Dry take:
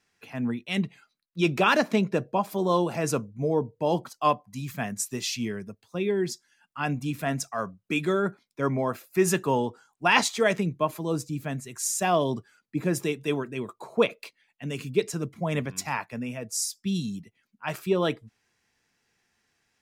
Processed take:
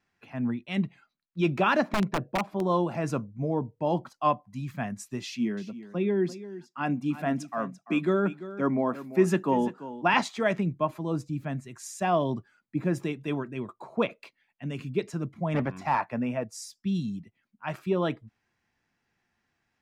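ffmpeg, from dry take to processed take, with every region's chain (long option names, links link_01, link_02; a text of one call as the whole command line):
ffmpeg -i in.wav -filter_complex "[0:a]asettb=1/sr,asplit=3[link_01][link_02][link_03];[link_01]atrim=end=1.894[link_04];[link_02]atrim=start=1.89:end=2.61,asetpts=PTS-STARTPTS,afade=type=in:duration=0.004:curve=qsin,afade=type=out:start_time=0.716:duration=0.004:curve=qsin,lowpass=frequency=2400:poles=1,aeval=exprs='(mod(7.08*val(0)+1,2)-1)/7.08':channel_layout=same[link_05];[link_03]atrim=start=2.606[link_06];[link_04][link_05]acrossfade=duration=0.004:curve1=hsin:curve2=qsin[link_07];[link_07][link_06]acrossfade=duration=0.004:curve1=qsin:curve2=hsin,asettb=1/sr,asplit=3[link_08][link_09][link_10];[link_08]atrim=end=5.234[link_11];[link_09]atrim=start=5.23:end=10.14,asetpts=PTS-STARTPTS,afade=type=in:duration=0.004:curve=qsin,afade=type=out:start_time=4.906:duration=0.004:curve=qsin,highpass=frequency=190:width=0.5412,highpass=frequency=190:width=1.3066,lowshelf=frequency=280:gain=8,aecho=1:1:341:0.188,atrim=end_sample=216531[link_12];[link_10]atrim=start=10.136[link_13];[link_11][link_12]acrossfade=duration=0.004:curve1=hsin:curve2=qsin[link_14];[link_14][link_13]acrossfade=duration=0.004:curve1=qsin:curve2=hsin,asettb=1/sr,asplit=3[link_15][link_16][link_17];[link_15]atrim=end=15.544[link_18];[link_16]atrim=start=15.54:end=16.44,asetpts=PTS-STARTPTS,afade=type=in:duration=0.004:curve=qsin,afade=type=out:start_time=0.896:duration=0.004:curve=qsin,deesser=0.9,asoftclip=type=hard:threshold=-24dB,equalizer=frequency=750:width=0.4:gain=9.5[link_19];[link_17]atrim=start=16.436[link_20];[link_18][link_19]acrossfade=duration=0.004:curve1=hsin:curve2=qsin[link_21];[link_21][link_20]acrossfade=duration=0.004:curve1=qsin:curve2=hsin,lowpass=frequency=1600:poles=1,equalizer=frequency=450:width_type=o:width=0.32:gain=-7.5" out.wav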